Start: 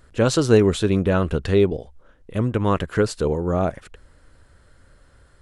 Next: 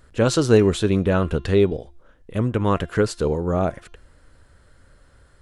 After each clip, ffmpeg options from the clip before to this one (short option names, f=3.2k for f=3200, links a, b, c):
-af "bandreject=f=346.8:t=h:w=4,bandreject=f=693.6:t=h:w=4,bandreject=f=1.0404k:t=h:w=4,bandreject=f=1.3872k:t=h:w=4,bandreject=f=1.734k:t=h:w=4,bandreject=f=2.0808k:t=h:w=4,bandreject=f=2.4276k:t=h:w=4,bandreject=f=2.7744k:t=h:w=4,bandreject=f=3.1212k:t=h:w=4,bandreject=f=3.468k:t=h:w=4,bandreject=f=3.8148k:t=h:w=4,bandreject=f=4.1616k:t=h:w=4,bandreject=f=4.5084k:t=h:w=4,bandreject=f=4.8552k:t=h:w=4,bandreject=f=5.202k:t=h:w=4,bandreject=f=5.5488k:t=h:w=4,bandreject=f=5.8956k:t=h:w=4,bandreject=f=6.2424k:t=h:w=4,bandreject=f=6.5892k:t=h:w=4"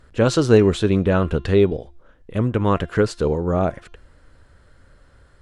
-af "highshelf=f=8.7k:g=-11,volume=1.5dB"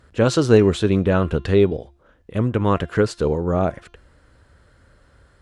-af "highpass=40"